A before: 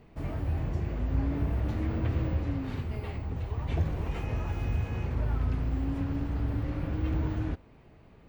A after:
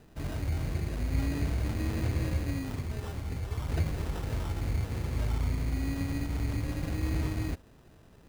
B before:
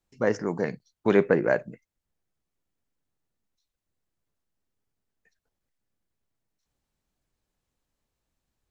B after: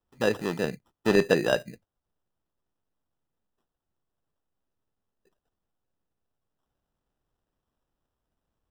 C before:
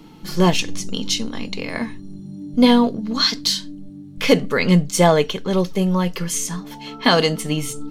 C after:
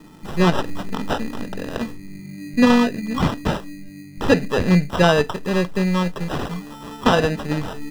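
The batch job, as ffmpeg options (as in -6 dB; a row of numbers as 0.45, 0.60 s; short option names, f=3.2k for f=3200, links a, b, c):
-filter_complex "[0:a]acrusher=samples=20:mix=1:aa=0.000001,acrossover=split=5400[a][b];[b]acompressor=threshold=-43dB:ratio=4:attack=1:release=60[c];[a][c]amix=inputs=2:normalize=0,volume=-1dB"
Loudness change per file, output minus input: -1.0, -1.0, -1.5 LU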